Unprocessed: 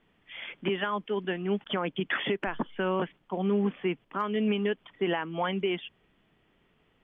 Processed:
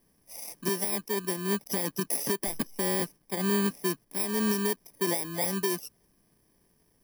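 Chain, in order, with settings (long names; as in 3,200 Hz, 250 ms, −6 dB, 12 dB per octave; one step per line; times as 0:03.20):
samples in bit-reversed order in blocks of 32 samples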